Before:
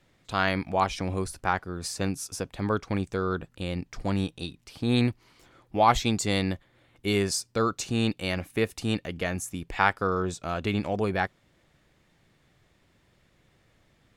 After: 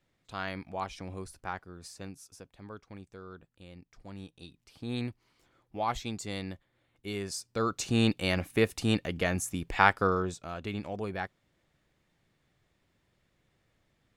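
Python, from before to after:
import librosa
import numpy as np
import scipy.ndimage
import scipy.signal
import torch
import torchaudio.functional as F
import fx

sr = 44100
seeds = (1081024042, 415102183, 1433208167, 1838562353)

y = fx.gain(x, sr, db=fx.line((1.54, -11.0), (2.63, -18.5), (4.08, -18.5), (4.62, -11.0), (7.2, -11.0), (7.95, 0.5), (10.06, 0.5), (10.49, -8.5)))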